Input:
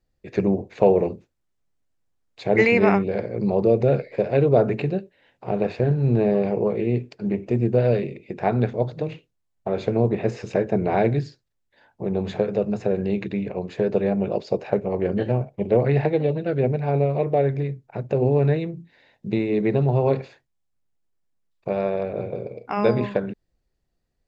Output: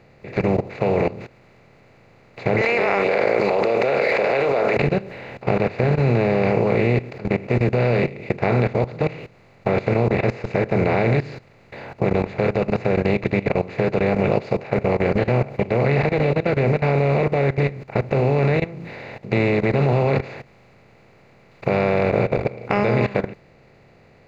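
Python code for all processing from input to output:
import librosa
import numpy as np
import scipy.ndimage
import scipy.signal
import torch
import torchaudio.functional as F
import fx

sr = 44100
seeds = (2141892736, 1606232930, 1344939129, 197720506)

y = fx.chain(x, sr, fx.highpass(hz=520.0, slope=24),
    fx.env_flatten(amount_pct=100), at=(2.61, 4.77))
y = fx.bin_compress(y, sr, power=0.4)
y = fx.level_steps(y, sr, step_db=17)
y = fx.low_shelf(y, sr, hz=120.0, db=9.5)
y = y * 10.0 ** (-2.5 / 20.0)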